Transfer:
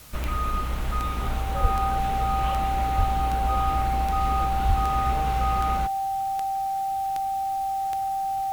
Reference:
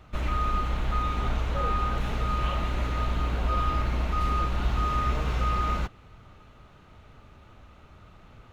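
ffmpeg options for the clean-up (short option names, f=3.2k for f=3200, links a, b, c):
-filter_complex "[0:a]adeclick=t=4,bandreject=f=780:w=30,asplit=3[a][b][c];[a]afade=t=out:st=1.61:d=0.02[d];[b]highpass=f=140:w=0.5412,highpass=f=140:w=1.3066,afade=t=in:st=1.61:d=0.02,afade=t=out:st=1.73:d=0.02[e];[c]afade=t=in:st=1.73:d=0.02[f];[d][e][f]amix=inputs=3:normalize=0,asplit=3[g][h][i];[g]afade=t=out:st=2.97:d=0.02[j];[h]highpass=f=140:w=0.5412,highpass=f=140:w=1.3066,afade=t=in:st=2.97:d=0.02,afade=t=out:st=3.09:d=0.02[k];[i]afade=t=in:st=3.09:d=0.02[l];[j][k][l]amix=inputs=3:normalize=0,asplit=3[m][n][o];[m]afade=t=out:st=4.67:d=0.02[p];[n]highpass=f=140:w=0.5412,highpass=f=140:w=1.3066,afade=t=in:st=4.67:d=0.02,afade=t=out:st=4.79:d=0.02[q];[o]afade=t=in:st=4.79:d=0.02[r];[p][q][r]amix=inputs=3:normalize=0,afwtdn=0.004"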